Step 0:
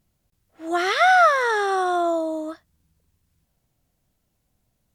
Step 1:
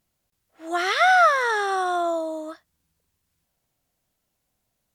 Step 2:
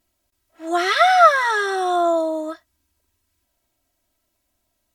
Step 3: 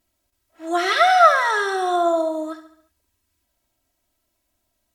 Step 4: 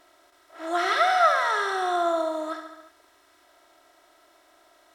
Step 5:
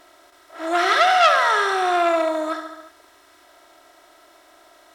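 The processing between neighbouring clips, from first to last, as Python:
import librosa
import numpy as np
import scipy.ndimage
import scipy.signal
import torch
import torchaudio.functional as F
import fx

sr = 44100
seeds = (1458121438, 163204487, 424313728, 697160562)

y1 = fx.low_shelf(x, sr, hz=310.0, db=-11.0)
y2 = y1 + 0.92 * np.pad(y1, (int(3.1 * sr / 1000.0), 0))[:len(y1)]
y2 = y2 * 10.0 ** (1.0 / 20.0)
y3 = fx.echo_feedback(y2, sr, ms=70, feedback_pct=51, wet_db=-11.5)
y3 = y3 * 10.0 ** (-1.0 / 20.0)
y4 = fx.bin_compress(y3, sr, power=0.6)
y4 = y4 * 10.0 ** (-8.5 / 20.0)
y5 = fx.transformer_sat(y4, sr, knee_hz=2100.0)
y5 = y5 * 10.0 ** (7.0 / 20.0)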